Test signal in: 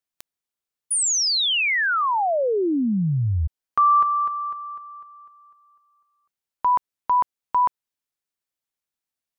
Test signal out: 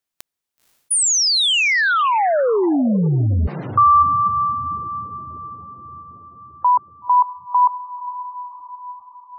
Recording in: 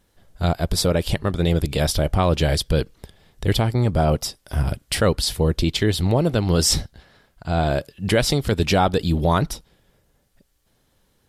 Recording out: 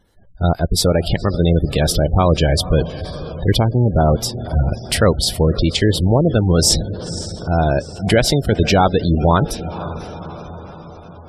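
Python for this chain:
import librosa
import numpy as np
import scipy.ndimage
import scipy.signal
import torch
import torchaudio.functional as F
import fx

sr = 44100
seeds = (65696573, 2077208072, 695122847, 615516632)

y = fx.echo_diffused(x, sr, ms=509, feedback_pct=59, wet_db=-13.0)
y = fx.spec_gate(y, sr, threshold_db=-25, keep='strong')
y = y * librosa.db_to_amplitude(4.5)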